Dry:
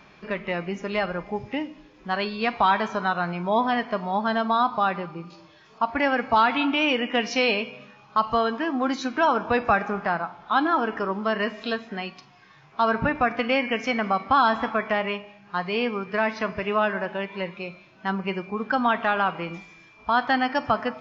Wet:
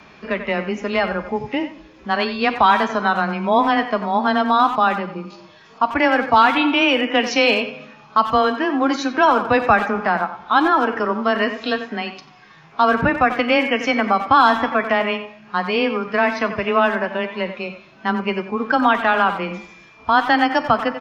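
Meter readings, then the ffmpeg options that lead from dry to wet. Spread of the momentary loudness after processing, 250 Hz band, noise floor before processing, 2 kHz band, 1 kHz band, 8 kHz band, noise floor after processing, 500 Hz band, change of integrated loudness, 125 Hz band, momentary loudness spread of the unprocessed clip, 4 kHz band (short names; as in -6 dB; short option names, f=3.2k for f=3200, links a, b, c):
11 LU, +6.0 dB, -53 dBFS, +6.5 dB, +6.5 dB, n/a, -47 dBFS, +6.0 dB, +6.5 dB, +3.5 dB, 11 LU, +6.5 dB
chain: -filter_complex "[0:a]afreqshift=14,asplit=2[a][b];[b]adelay=90,highpass=300,lowpass=3.4k,asoftclip=type=hard:threshold=-16dB,volume=-10dB[c];[a][c]amix=inputs=2:normalize=0,volume=6dB"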